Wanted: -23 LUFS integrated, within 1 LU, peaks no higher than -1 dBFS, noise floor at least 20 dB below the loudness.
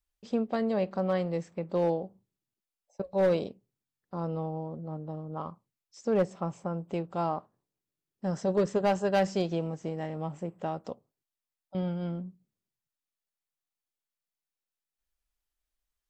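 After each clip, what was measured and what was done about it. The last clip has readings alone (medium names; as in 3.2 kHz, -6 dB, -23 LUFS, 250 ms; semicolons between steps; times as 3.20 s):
clipped samples 0.3%; clipping level -19.0 dBFS; loudness -31.5 LUFS; peak level -19.0 dBFS; loudness target -23.0 LUFS
-> clip repair -19 dBFS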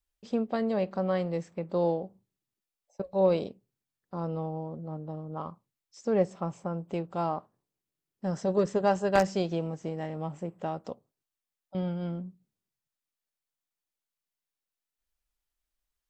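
clipped samples 0.0%; loudness -31.0 LUFS; peak level -10.0 dBFS; loudness target -23.0 LUFS
-> trim +8 dB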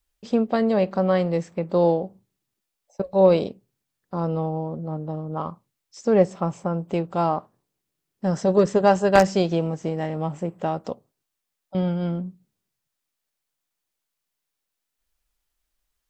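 loudness -23.0 LUFS; peak level -2.0 dBFS; noise floor -82 dBFS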